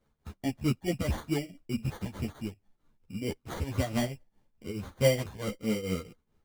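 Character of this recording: tremolo triangle 4.6 Hz, depth 85%; aliases and images of a low sample rate 2600 Hz, jitter 0%; a shimmering, thickened sound

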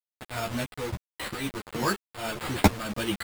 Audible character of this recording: aliases and images of a low sample rate 6000 Hz, jitter 0%; tremolo saw up 1.5 Hz, depth 75%; a quantiser's noise floor 6-bit, dither none; a shimmering, thickened sound

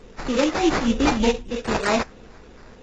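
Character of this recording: phasing stages 2, 3.3 Hz, lowest notch 540–4800 Hz; aliases and images of a low sample rate 3200 Hz, jitter 20%; AAC

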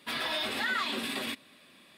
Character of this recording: noise floor -59 dBFS; spectral tilt -3.0 dB/oct

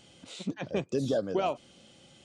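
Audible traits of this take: noise floor -58 dBFS; spectral tilt -5.5 dB/oct

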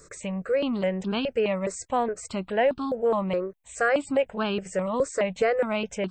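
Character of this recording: notches that jump at a steady rate 4.8 Hz 830–2000 Hz

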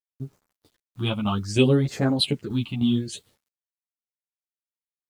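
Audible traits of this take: phasing stages 6, 0.64 Hz, lowest notch 450–3100 Hz; a quantiser's noise floor 10-bit, dither none; tremolo saw down 3.2 Hz, depth 55%; a shimmering, thickened sound

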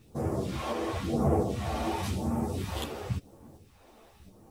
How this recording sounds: phasing stages 2, 0.95 Hz, lowest notch 110–3500 Hz; a quantiser's noise floor 12-bit, dither triangular; tremolo saw up 1.4 Hz, depth 30%; a shimmering, thickened sound

